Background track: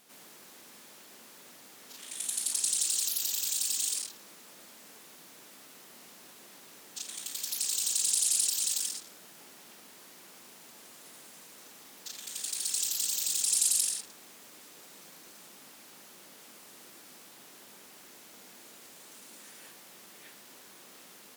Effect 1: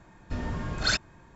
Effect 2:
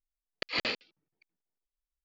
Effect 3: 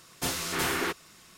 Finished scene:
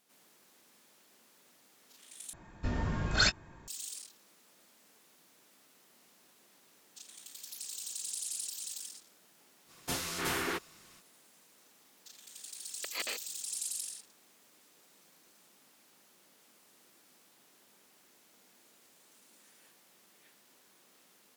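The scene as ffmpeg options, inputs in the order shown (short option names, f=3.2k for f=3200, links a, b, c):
-filter_complex "[0:a]volume=-11.5dB[a];[1:a]asplit=2[b][c];[c]adelay=19,volume=-12dB[d];[b][d]amix=inputs=2:normalize=0[e];[2:a]highpass=410,lowpass=7.2k[f];[a]asplit=2[g][h];[g]atrim=end=2.334[i];[e]atrim=end=1.35,asetpts=PTS-STARTPTS,volume=-1dB[j];[h]atrim=start=3.676[k];[3:a]atrim=end=1.37,asetpts=PTS-STARTPTS,volume=-5dB,afade=t=in:d=0.05,afade=t=out:st=1.32:d=0.05,adelay=9660[l];[f]atrim=end=2.04,asetpts=PTS-STARTPTS,volume=-6.5dB,afade=t=in:d=0.004:c=hsin,afade=t=out:st=2.036:d=0.004:c=hsin,adelay=12420[m];[i][j]acrossfade=d=0.004:c1=hsin:c2=hsin[n];[n][k]acrossfade=d=0.004:c1=hsin:c2=hsin[o];[o][l][m]amix=inputs=3:normalize=0"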